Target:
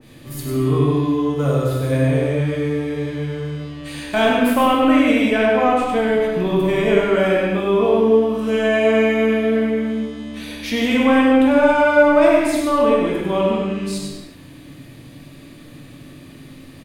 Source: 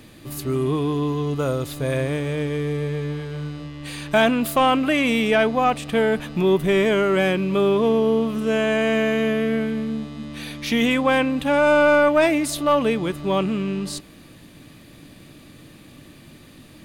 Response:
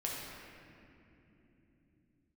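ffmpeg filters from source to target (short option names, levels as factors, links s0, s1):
-filter_complex "[0:a]aecho=1:1:99:0.501[s0];[1:a]atrim=start_sample=2205,afade=t=out:st=0.34:d=0.01,atrim=end_sample=15435[s1];[s0][s1]afir=irnorm=-1:irlink=0,adynamicequalizer=threshold=0.0316:dfrequency=1900:dqfactor=0.7:tfrequency=1900:tqfactor=0.7:attack=5:release=100:ratio=0.375:range=2:mode=cutabove:tftype=highshelf"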